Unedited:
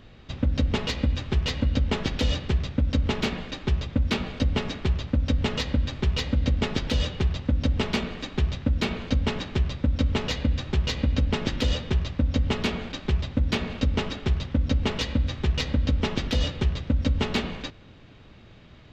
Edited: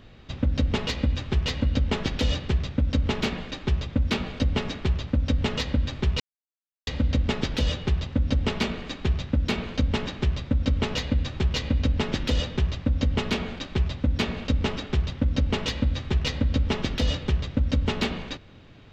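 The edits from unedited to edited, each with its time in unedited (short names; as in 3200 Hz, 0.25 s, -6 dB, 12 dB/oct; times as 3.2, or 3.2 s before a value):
6.2 insert silence 0.67 s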